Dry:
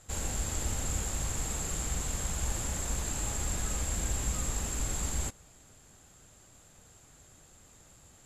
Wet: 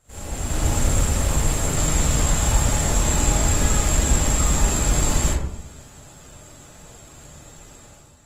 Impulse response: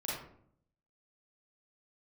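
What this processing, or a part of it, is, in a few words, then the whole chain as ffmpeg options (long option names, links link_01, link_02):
speakerphone in a meeting room: -filter_complex "[1:a]atrim=start_sample=2205[link_01];[0:a][link_01]afir=irnorm=-1:irlink=0,dynaudnorm=framelen=110:gausssize=9:maxgain=11.5dB" -ar 48000 -c:a libopus -b:a 24k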